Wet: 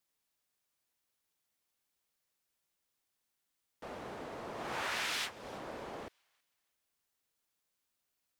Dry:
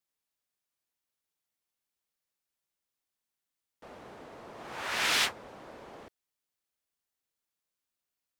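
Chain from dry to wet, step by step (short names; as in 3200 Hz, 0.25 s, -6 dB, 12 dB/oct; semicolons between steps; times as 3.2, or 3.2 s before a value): compressor 8:1, threshold -38 dBFS, peak gain reduction 14.5 dB; on a send: thin delay 0.323 s, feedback 30%, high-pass 2200 Hz, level -21.5 dB; on the sum: gain +4 dB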